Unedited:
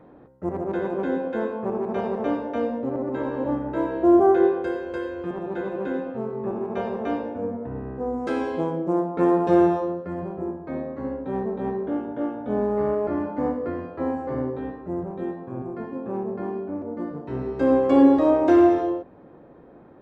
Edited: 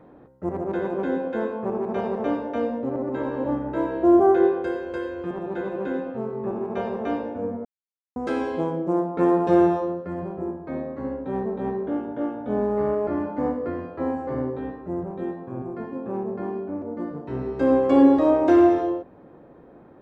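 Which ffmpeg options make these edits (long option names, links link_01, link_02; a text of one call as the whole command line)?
ffmpeg -i in.wav -filter_complex "[0:a]asplit=3[link_01][link_02][link_03];[link_01]atrim=end=7.65,asetpts=PTS-STARTPTS,afade=type=out:start_time=7.646:duration=0.004:curve=hsin[link_04];[link_02]atrim=start=7.65:end=8.16,asetpts=PTS-STARTPTS,volume=0[link_05];[link_03]atrim=start=8.16,asetpts=PTS-STARTPTS,afade=type=in:duration=0.004:curve=hsin[link_06];[link_04][link_05][link_06]concat=n=3:v=0:a=1" out.wav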